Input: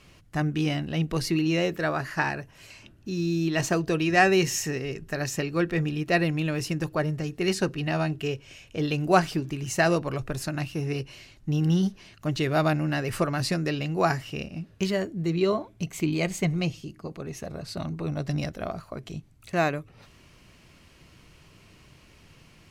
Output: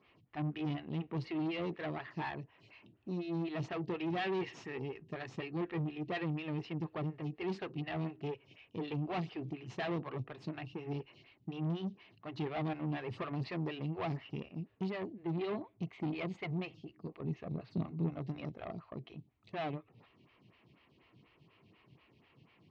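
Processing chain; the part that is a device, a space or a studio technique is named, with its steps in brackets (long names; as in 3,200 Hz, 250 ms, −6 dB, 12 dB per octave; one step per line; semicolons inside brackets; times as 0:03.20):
vibe pedal into a guitar amplifier (phaser with staggered stages 4.1 Hz; tube saturation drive 29 dB, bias 0.6; loudspeaker in its box 110–3,600 Hz, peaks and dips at 120 Hz +4 dB, 570 Hz −6 dB, 1,500 Hz −8 dB)
0:17.20–0:18.19: parametric band 160 Hz +8 dB 1.7 octaves
level −2.5 dB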